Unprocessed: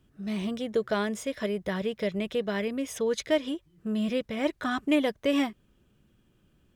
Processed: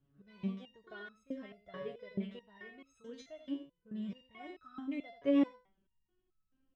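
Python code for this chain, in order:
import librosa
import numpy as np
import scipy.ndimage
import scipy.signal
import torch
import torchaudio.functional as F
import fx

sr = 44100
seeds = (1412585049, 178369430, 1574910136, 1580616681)

y = fx.spacing_loss(x, sr, db_at_10k=24)
y = y + 10.0 ** (-9.5 / 20.0) * np.pad(y, (int(84 * sr / 1000.0), 0))[:len(y)]
y = fx.resonator_held(y, sr, hz=4.6, low_hz=140.0, high_hz=1300.0)
y = F.gain(torch.from_numpy(y), 2.0).numpy()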